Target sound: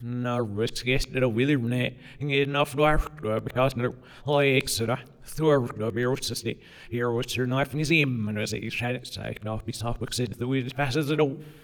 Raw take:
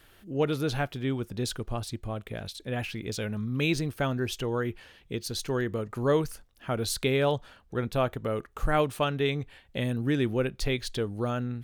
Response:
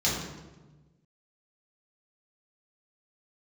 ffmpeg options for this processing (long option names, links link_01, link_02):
-filter_complex "[0:a]areverse,adynamicequalizer=threshold=0.00282:dfrequency=2400:dqfactor=4.5:tfrequency=2400:tqfactor=4.5:attack=5:release=100:ratio=0.375:range=3.5:mode=boostabove:tftype=bell,asplit=2[link_01][link_02];[1:a]atrim=start_sample=2205[link_03];[link_02][link_03]afir=irnorm=-1:irlink=0,volume=-34.5dB[link_04];[link_01][link_04]amix=inputs=2:normalize=0,volume=3dB"